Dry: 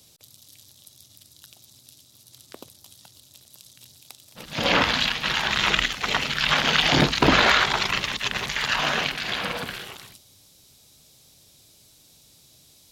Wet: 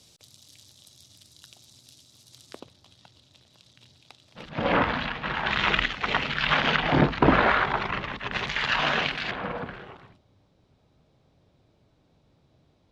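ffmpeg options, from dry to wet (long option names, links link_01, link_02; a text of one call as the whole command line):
ffmpeg -i in.wav -af "asetnsamples=nb_out_samples=441:pad=0,asendcmd='2.6 lowpass f 3300;4.49 lowpass f 1600;5.46 lowpass f 2700;6.76 lowpass f 1600;8.32 lowpass f 3500;9.31 lowpass f 1300',lowpass=7700" out.wav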